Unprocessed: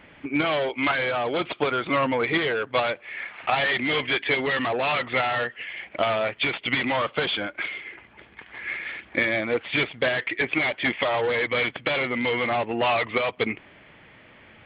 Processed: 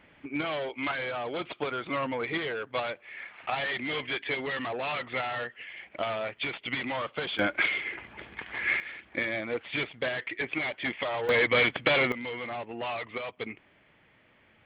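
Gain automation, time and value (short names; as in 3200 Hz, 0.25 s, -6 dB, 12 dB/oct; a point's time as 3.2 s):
-8 dB
from 7.39 s +4 dB
from 8.8 s -7.5 dB
from 11.29 s +1 dB
from 12.12 s -11.5 dB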